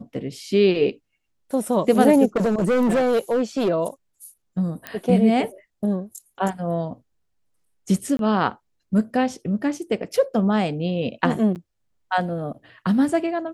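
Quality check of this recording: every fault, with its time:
2.36–3.7 clipped -16 dBFS
4.87 pop -14 dBFS
8.17–8.19 gap 22 ms
11.55–11.56 gap 8.7 ms

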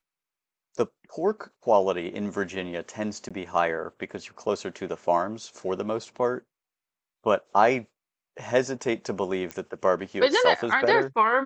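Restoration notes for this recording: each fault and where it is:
3.29–3.31 gap 16 ms
9.51 pop -18 dBFS

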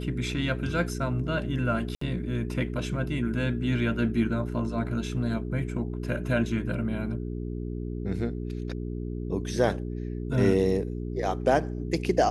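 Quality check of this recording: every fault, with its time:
hum 60 Hz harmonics 7 -33 dBFS
1.95–2.01 gap 64 ms

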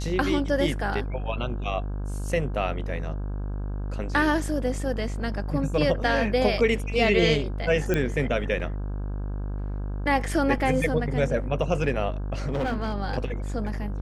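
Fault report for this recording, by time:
buzz 50 Hz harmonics 33 -30 dBFS
7.94 pop -12 dBFS
12.47–12.95 clipped -22.5 dBFS

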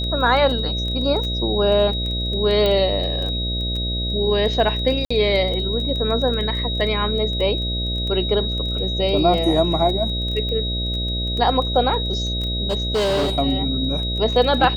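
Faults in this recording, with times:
buzz 60 Hz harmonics 11 -25 dBFS
crackle 12/s -25 dBFS
tone 3800 Hz -25 dBFS
2.66 pop -9 dBFS
5.05–5.11 gap 55 ms
12.68–13.39 clipped -16.5 dBFS

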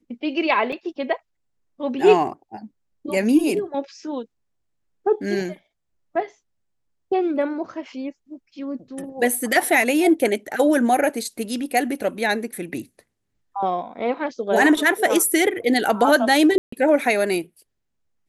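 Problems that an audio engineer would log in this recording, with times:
0.72–0.73 gap 5.1 ms
16.58–16.72 gap 0.144 s

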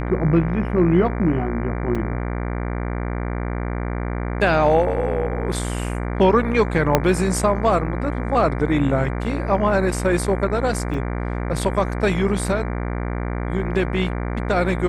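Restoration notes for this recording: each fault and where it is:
buzz 60 Hz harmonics 39 -25 dBFS
1.95 gap 4.2 ms
6.95 pop -1 dBFS
10.94 gap 3.4 ms

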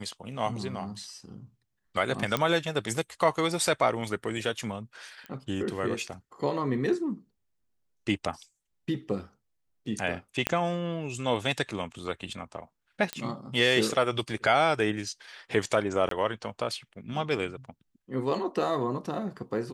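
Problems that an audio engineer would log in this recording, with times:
2.37 pop -12 dBFS
5.26 pop -26 dBFS
10.47 pop -9 dBFS
13.13 pop -14 dBFS
16.09–16.11 gap 23 ms

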